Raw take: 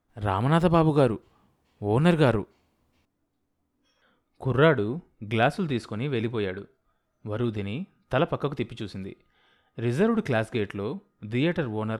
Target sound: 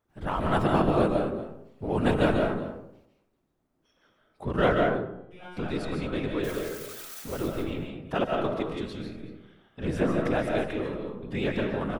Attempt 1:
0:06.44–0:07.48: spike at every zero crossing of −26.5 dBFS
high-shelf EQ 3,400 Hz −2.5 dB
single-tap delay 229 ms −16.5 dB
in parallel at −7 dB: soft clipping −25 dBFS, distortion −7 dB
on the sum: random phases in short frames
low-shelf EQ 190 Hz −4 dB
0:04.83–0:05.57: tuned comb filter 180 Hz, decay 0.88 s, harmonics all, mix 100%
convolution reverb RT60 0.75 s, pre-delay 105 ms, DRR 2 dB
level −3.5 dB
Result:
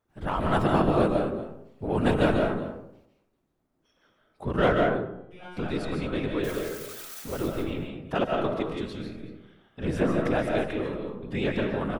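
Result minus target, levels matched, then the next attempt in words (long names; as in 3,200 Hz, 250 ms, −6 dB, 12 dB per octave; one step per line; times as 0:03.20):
soft clipping: distortion −4 dB
0:06.44–0:07.48: spike at every zero crossing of −26.5 dBFS
high-shelf EQ 3,400 Hz −2.5 dB
single-tap delay 229 ms −16.5 dB
in parallel at −7 dB: soft clipping −33 dBFS, distortion −3 dB
on the sum: random phases in short frames
low-shelf EQ 190 Hz −4 dB
0:04.83–0:05.57: tuned comb filter 180 Hz, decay 0.88 s, harmonics all, mix 100%
convolution reverb RT60 0.75 s, pre-delay 105 ms, DRR 2 dB
level −3.5 dB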